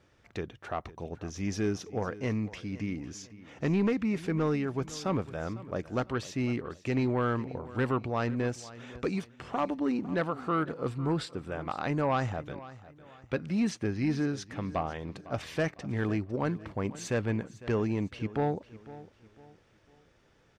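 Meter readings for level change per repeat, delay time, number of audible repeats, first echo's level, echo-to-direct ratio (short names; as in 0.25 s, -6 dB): -9.0 dB, 0.503 s, 2, -17.5 dB, -17.0 dB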